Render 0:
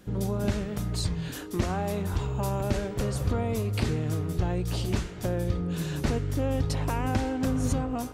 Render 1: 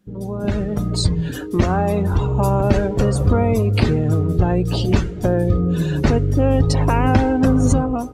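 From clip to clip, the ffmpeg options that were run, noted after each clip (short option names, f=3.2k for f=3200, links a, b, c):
-af "bandreject=f=60:t=h:w=6,bandreject=f=120:t=h:w=6,afftdn=nr=15:nf=-40,dynaudnorm=f=220:g=5:m=12.5dB,volume=1dB"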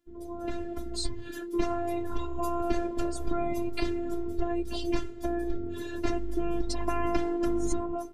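-af "afftfilt=real='hypot(re,im)*cos(PI*b)':imag='0':win_size=512:overlap=0.75,volume=-7dB"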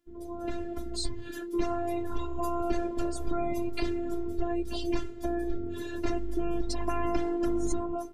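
-af "asoftclip=type=tanh:threshold=-14dB"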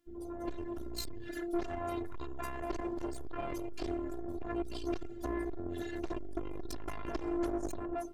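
-af "aeval=exprs='(tanh(39.8*val(0)+0.65)-tanh(0.65))/39.8':c=same,volume=4dB"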